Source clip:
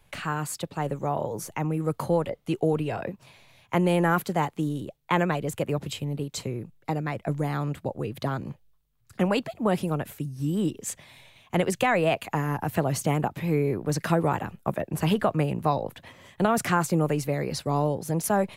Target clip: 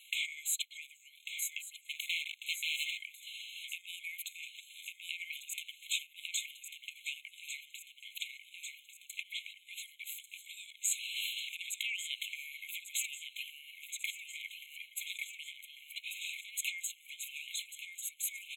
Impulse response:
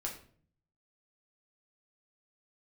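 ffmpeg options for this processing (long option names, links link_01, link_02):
-filter_complex "[0:a]asettb=1/sr,asplit=3[link_01][link_02][link_03];[link_01]atrim=end=9.234[link_04];[link_02]atrim=start=9.23:end=9.64,asetpts=PTS-STARTPTS,afade=type=in:duration=0.004:curve=qsin,afade=type=out:start_time=0.406:duration=0.004:curve=qsin,highshelf=frequency=4900:gain=-11.5[link_05];[link_03]atrim=start=9.636[link_06];[link_04][link_05]acrossfade=duration=0.004:curve1=hsin:curve2=qsin[link_07];[link_07][link_06]acrossfade=duration=0.004:curve1=qsin:curve2=hsin,acompressor=threshold=-46dB:ratio=2,equalizer=frequency=150:width_type=o:width=0.73:gain=8,aecho=1:1:1145|2290|3435|4580|5725|6870|8015:0.355|0.209|0.124|0.0729|0.043|0.0254|0.015,aeval=exprs='val(0)*sin(2*PI*570*n/s)':channel_layout=same,asettb=1/sr,asplit=3[link_08][link_09][link_10];[link_08]atrim=end=1.894[link_11];[link_09]atrim=start=1.89:end=2.98,asetpts=PTS-STARTPTS,afade=type=in:duration=0.004:curve=qsin,afade=type=out:start_time=1.086:duration=0.004:curve=qsin,aeval=exprs='0.0106*(abs(mod(val(0)/0.0106+3,4)-2)-1)':channel_layout=same[link_12];[link_10]atrim=start=2.976[link_13];[link_11][link_12]acrossfade=duration=0.004:curve1=hsin:curve2=qsin[link_14];[link_14][link_13]acrossfade=duration=0.004:curve1=qsin:curve2=hsin,asettb=1/sr,asplit=3[link_15][link_16][link_17];[link_15]atrim=end=10.794[link_18];[link_16]atrim=start=10.79:end=11.57,asetpts=PTS-STARTPTS,afade=type=in:duration=0.004:curve=qsin,afade=type=out:start_time=0.776:duration=0.004:curve=qsin,acontrast=37[link_19];[link_17]atrim=start=11.566[link_20];[link_18][link_19]acrossfade=duration=0.004:curve1=hsin:curve2=qsin[link_21];[link_21][link_20]acrossfade=duration=0.004:curve1=qsin:curve2=hsin,alimiter=level_in=9dB:limit=-24dB:level=0:latency=1:release=21,volume=-9dB,afftfilt=real='re*eq(mod(floor(b*sr/1024/2100),2),1)':imag='im*eq(mod(floor(b*sr/1024/2100),2),1)':win_size=1024:overlap=0.75,volume=16.5dB"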